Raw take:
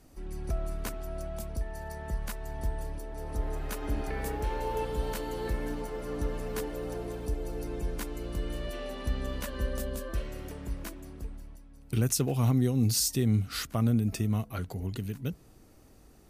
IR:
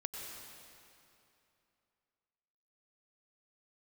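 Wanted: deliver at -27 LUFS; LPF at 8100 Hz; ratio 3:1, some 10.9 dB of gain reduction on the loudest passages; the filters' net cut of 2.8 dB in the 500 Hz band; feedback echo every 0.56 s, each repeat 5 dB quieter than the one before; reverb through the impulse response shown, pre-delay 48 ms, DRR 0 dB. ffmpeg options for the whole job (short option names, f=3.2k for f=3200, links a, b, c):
-filter_complex "[0:a]lowpass=8.1k,equalizer=f=500:t=o:g=-3.5,acompressor=threshold=-37dB:ratio=3,aecho=1:1:560|1120|1680|2240|2800|3360|3920:0.562|0.315|0.176|0.0988|0.0553|0.031|0.0173,asplit=2[a][b];[1:a]atrim=start_sample=2205,adelay=48[c];[b][c]afir=irnorm=-1:irlink=0,volume=0dB[d];[a][d]amix=inputs=2:normalize=0,volume=9.5dB"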